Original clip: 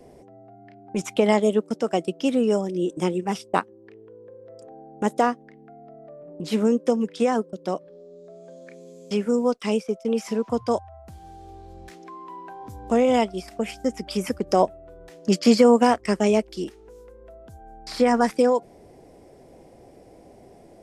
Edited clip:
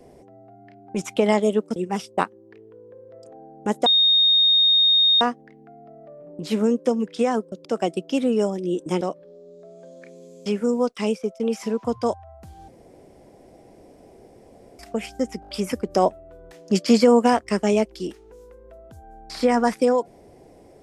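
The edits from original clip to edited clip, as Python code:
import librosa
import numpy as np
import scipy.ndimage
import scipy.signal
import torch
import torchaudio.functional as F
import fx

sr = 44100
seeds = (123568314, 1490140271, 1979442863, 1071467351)

y = fx.edit(x, sr, fx.move(start_s=1.76, length_s=1.36, to_s=7.66),
    fx.insert_tone(at_s=5.22, length_s=1.35, hz=3700.0, db=-13.5),
    fx.room_tone_fill(start_s=11.33, length_s=2.11),
    fx.stutter(start_s=14.06, slice_s=0.02, count=5), tone=tone)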